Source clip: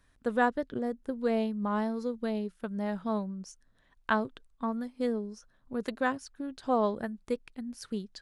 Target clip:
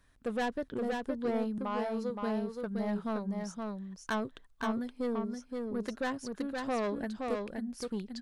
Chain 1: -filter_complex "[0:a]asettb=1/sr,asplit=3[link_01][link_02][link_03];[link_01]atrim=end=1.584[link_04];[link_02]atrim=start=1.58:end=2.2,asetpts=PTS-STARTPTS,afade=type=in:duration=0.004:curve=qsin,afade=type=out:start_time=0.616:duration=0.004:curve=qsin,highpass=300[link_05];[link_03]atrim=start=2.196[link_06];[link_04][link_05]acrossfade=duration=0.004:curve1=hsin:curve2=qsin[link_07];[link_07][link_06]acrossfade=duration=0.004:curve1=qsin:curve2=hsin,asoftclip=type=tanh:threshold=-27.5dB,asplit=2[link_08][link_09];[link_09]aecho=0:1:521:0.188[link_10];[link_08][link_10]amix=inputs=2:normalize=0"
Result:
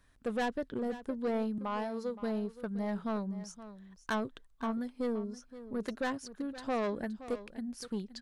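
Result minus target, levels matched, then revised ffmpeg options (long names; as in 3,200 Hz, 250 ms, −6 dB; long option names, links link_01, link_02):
echo-to-direct −10.5 dB
-filter_complex "[0:a]asettb=1/sr,asplit=3[link_01][link_02][link_03];[link_01]atrim=end=1.584[link_04];[link_02]atrim=start=1.58:end=2.2,asetpts=PTS-STARTPTS,afade=type=in:duration=0.004:curve=qsin,afade=type=out:start_time=0.616:duration=0.004:curve=qsin,highpass=300[link_05];[link_03]atrim=start=2.196[link_06];[link_04][link_05]acrossfade=duration=0.004:curve1=hsin:curve2=qsin[link_07];[link_07][link_06]acrossfade=duration=0.004:curve1=qsin:curve2=hsin,asoftclip=type=tanh:threshold=-27.5dB,asplit=2[link_08][link_09];[link_09]aecho=0:1:521:0.631[link_10];[link_08][link_10]amix=inputs=2:normalize=0"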